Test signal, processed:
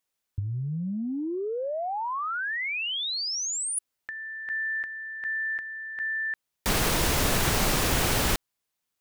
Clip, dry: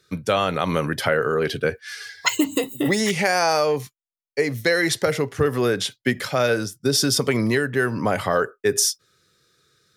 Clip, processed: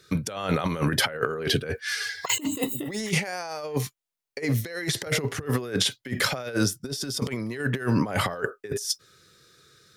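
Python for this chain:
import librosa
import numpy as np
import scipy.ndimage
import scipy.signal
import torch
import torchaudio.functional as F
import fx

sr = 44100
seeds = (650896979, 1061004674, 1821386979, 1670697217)

y = fx.over_compress(x, sr, threshold_db=-26.0, ratio=-0.5)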